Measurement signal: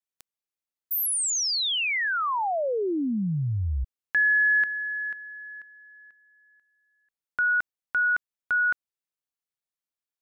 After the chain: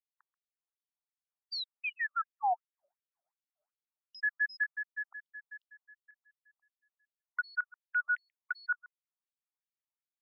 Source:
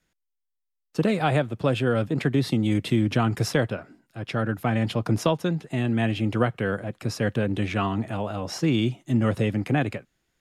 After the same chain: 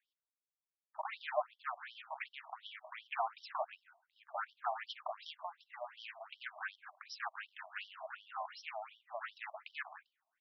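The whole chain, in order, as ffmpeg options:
-filter_complex "[0:a]asoftclip=type=hard:threshold=0.0794,equalizer=f=5600:w=0.35:g=-11.5,asplit=2[s0][s1];[s1]adelay=134.1,volume=0.0891,highshelf=f=4000:g=-3.02[s2];[s0][s2]amix=inputs=2:normalize=0,afftfilt=real='re*between(b*sr/1024,830*pow(4200/830,0.5+0.5*sin(2*PI*2.7*pts/sr))/1.41,830*pow(4200/830,0.5+0.5*sin(2*PI*2.7*pts/sr))*1.41)':imag='im*between(b*sr/1024,830*pow(4200/830,0.5+0.5*sin(2*PI*2.7*pts/sr))/1.41,830*pow(4200/830,0.5+0.5*sin(2*PI*2.7*pts/sr))*1.41)':win_size=1024:overlap=0.75,volume=1.12"

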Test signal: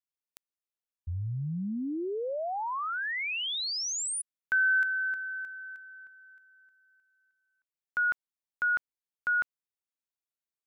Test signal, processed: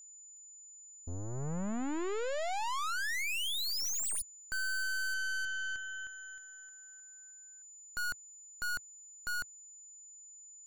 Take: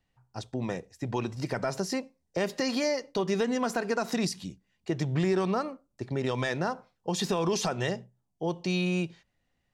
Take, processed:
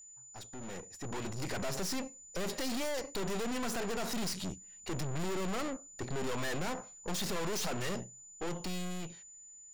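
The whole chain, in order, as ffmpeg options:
-af "aeval=exprs='(tanh(178*val(0)+0.75)-tanh(0.75))/178':c=same,dynaudnorm=f=160:g=13:m=3.16,aeval=exprs='val(0)+0.00282*sin(2*PI*7000*n/s)':c=same,equalizer=f=110:t=o:w=0.42:g=-5"

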